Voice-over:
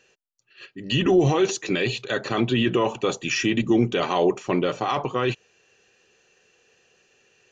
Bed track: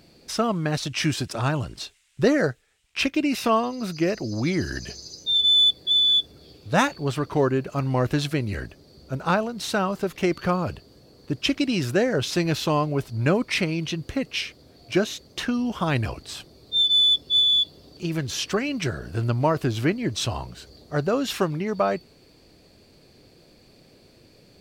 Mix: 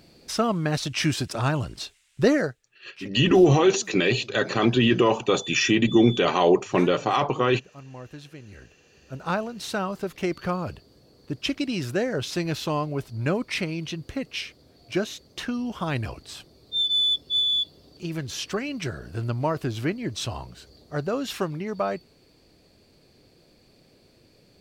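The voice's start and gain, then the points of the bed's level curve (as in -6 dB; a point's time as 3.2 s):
2.25 s, +2.0 dB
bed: 2.35 s 0 dB
2.76 s -18.5 dB
8.39 s -18.5 dB
9.36 s -4 dB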